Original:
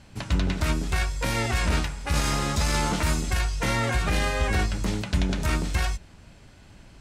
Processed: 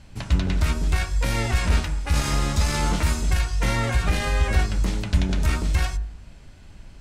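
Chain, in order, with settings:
low-shelf EQ 64 Hz +12 dB
hum removal 51.9 Hz, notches 35

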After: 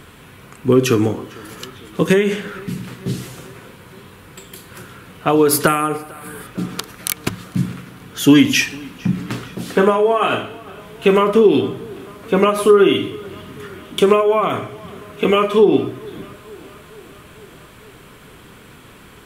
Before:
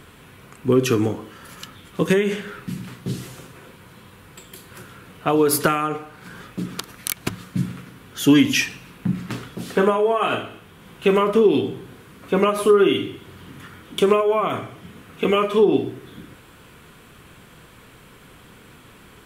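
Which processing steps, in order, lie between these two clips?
0:05.67–0:06.47: high shelf with overshoot 7,600 Hz +8.5 dB, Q 3
tape delay 451 ms, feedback 71%, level −22 dB, low-pass 4,700 Hz
level +4 dB

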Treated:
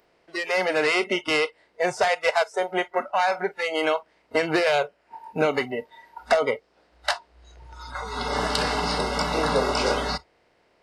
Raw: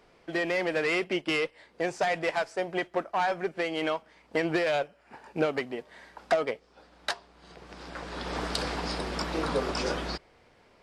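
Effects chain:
compressor on every frequency bin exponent 0.6
noise reduction from a noise print of the clip's start 25 dB
0:02.08–0:02.54: transient designer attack +2 dB, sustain −6 dB
level +3.5 dB

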